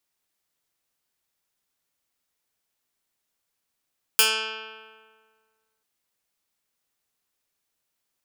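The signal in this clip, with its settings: plucked string A3, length 1.64 s, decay 1.76 s, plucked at 0.11, medium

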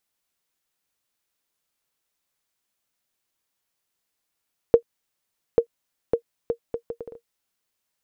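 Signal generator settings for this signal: bouncing ball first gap 0.84 s, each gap 0.66, 467 Hz, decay 87 ms -3 dBFS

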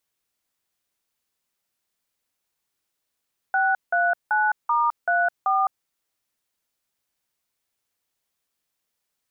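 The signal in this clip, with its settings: DTMF "639*34", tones 210 ms, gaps 174 ms, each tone -20.5 dBFS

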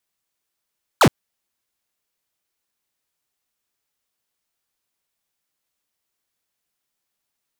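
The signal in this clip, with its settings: laser zap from 1.6 kHz, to 91 Hz, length 0.07 s square, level -11.5 dB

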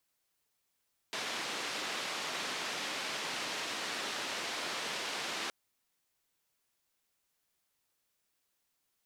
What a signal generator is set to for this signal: noise band 240–4100 Hz, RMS -38 dBFS 4.37 s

